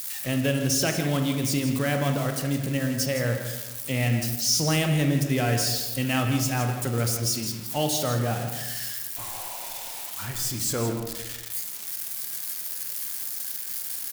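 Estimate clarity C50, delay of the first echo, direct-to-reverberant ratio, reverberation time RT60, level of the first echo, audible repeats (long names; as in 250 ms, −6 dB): 5.0 dB, 163 ms, 3.5 dB, 1.1 s, −10.0 dB, 1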